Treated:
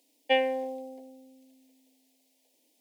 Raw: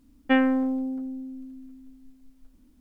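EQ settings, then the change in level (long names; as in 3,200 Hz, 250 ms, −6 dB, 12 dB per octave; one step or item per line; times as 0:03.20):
high-pass filter 520 Hz 24 dB per octave
Butterworth band-reject 1,300 Hz, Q 0.8
+6.0 dB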